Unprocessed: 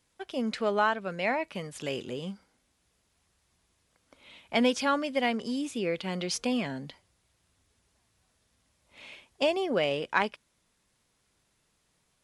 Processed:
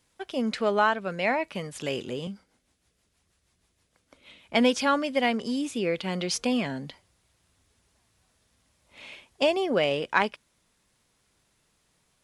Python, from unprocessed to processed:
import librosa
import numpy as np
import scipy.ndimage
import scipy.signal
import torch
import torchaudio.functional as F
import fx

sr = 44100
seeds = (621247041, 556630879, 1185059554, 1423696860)

y = fx.rotary(x, sr, hz=6.3, at=(2.27, 4.55))
y = F.gain(torch.from_numpy(y), 3.0).numpy()